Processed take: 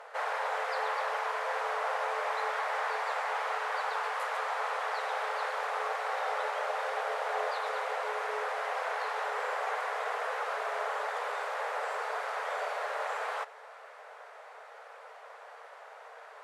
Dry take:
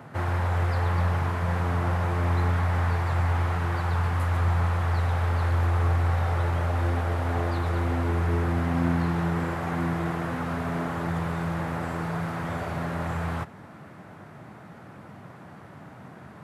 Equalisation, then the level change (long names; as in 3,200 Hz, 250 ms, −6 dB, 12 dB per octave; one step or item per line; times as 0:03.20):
linear-phase brick-wall high-pass 420 Hz
high-frequency loss of the air 57 metres
high-shelf EQ 4,400 Hz +6 dB
0.0 dB